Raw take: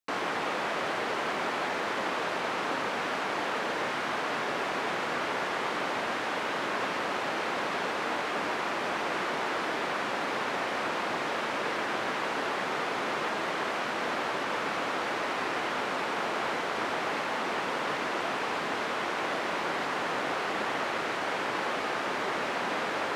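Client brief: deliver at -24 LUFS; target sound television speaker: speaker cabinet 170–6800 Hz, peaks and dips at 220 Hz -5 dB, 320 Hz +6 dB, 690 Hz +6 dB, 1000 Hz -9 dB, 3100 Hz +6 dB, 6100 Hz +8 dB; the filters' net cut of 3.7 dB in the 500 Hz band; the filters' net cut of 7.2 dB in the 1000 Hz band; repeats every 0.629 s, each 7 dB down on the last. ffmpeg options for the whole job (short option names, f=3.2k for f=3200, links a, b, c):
-af "highpass=f=170:w=0.5412,highpass=f=170:w=1.3066,equalizer=f=220:t=q:w=4:g=-5,equalizer=f=320:t=q:w=4:g=6,equalizer=f=690:t=q:w=4:g=6,equalizer=f=1k:t=q:w=4:g=-9,equalizer=f=3.1k:t=q:w=4:g=6,equalizer=f=6.1k:t=q:w=4:g=8,lowpass=f=6.8k:w=0.5412,lowpass=f=6.8k:w=1.3066,equalizer=f=500:t=o:g=-6,equalizer=f=1k:t=o:g=-6.5,aecho=1:1:629|1258|1887|2516|3145:0.447|0.201|0.0905|0.0407|0.0183,volume=7.5dB"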